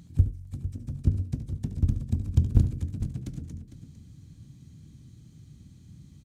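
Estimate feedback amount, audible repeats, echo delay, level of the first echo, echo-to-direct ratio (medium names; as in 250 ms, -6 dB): no regular repeats, 2, 72 ms, -12.5 dB, -9.0 dB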